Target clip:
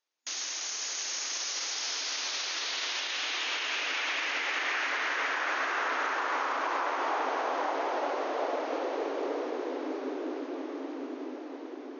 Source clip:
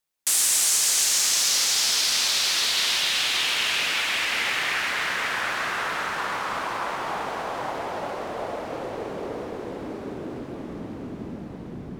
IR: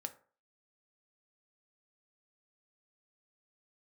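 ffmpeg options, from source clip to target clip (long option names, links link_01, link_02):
-af "alimiter=limit=-19.5dB:level=0:latency=1:release=76,afftfilt=real='re*between(b*sr/4096,250,6800)':imag='im*between(b*sr/4096,250,6800)':win_size=4096:overlap=0.75,adynamicequalizer=threshold=0.00794:dfrequency=4100:dqfactor=0.96:tfrequency=4100:tqfactor=0.96:attack=5:release=100:ratio=0.375:range=3:mode=cutabove:tftype=bell"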